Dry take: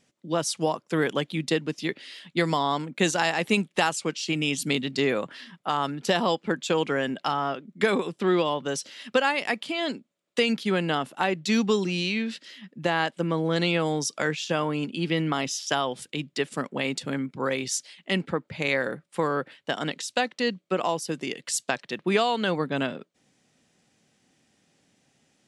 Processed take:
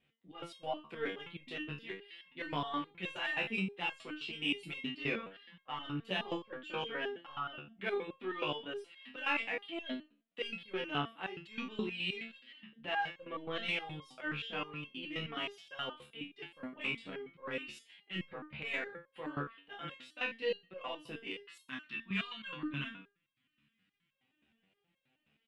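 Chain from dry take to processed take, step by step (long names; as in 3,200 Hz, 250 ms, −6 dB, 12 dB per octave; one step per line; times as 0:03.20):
gain on a spectral selection 0:21.40–0:24.13, 330–940 Hz −16 dB
transient designer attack −8 dB, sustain −3 dB
high shelf with overshoot 4,200 Hz −13.5 dB, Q 3
in parallel at −7.5 dB: soft clipping −16 dBFS, distortion −15 dB
on the sum: pitch vibrato 1.9 Hz 12 cents
double-tracking delay 27 ms −3 dB
on a send at −19 dB: convolution reverb RT60 0.50 s, pre-delay 3 ms
on the sum: step-sequenced resonator 9.5 Hz 72–540 Hz
level −5.5 dB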